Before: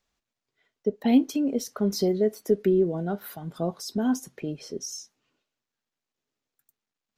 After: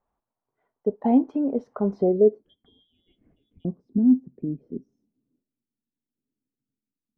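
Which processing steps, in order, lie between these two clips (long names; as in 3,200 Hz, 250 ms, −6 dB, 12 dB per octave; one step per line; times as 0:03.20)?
0:02.43–0:03.65: voice inversion scrambler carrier 3,600 Hz
low-pass filter sweep 920 Hz → 260 Hz, 0:01.91–0:02.56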